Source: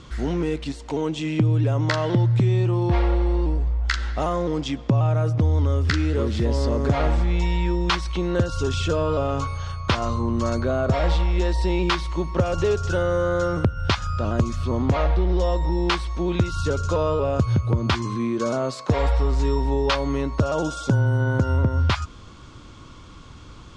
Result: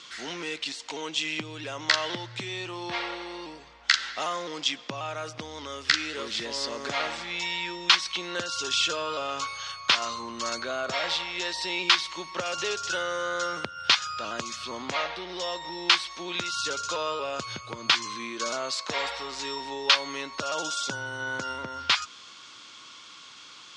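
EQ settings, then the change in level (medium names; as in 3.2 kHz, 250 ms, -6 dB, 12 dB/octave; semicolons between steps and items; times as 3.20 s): band-pass 180–5300 Hz; tilt EQ +2.5 dB/octave; tilt shelf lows -8 dB, about 1.1 kHz; -3.0 dB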